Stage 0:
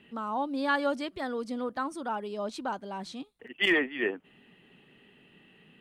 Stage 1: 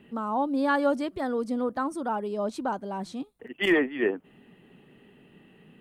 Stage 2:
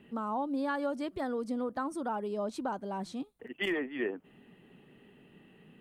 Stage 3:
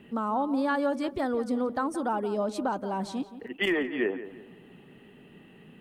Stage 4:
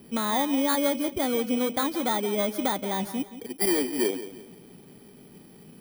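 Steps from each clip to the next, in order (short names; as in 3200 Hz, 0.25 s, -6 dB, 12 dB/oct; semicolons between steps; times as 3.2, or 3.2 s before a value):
bell 3300 Hz -9.5 dB 2.5 oct; gain +6 dB
compressor 4:1, threshold -27 dBFS, peak gain reduction 8.5 dB; gain -3 dB
darkening echo 0.173 s, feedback 37%, low-pass 3000 Hz, level -13 dB; gain +5.5 dB
FFT order left unsorted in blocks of 16 samples; gain +2.5 dB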